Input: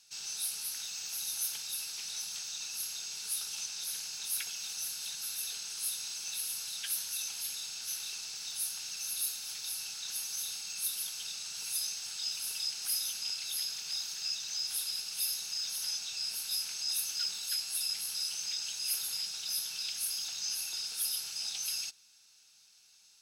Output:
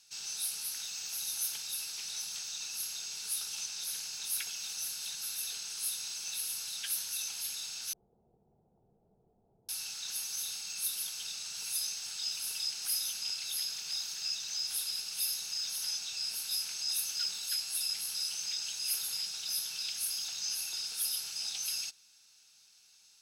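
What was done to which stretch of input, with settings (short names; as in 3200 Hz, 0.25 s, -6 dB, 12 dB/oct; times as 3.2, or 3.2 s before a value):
7.93–9.69 steep low-pass 650 Hz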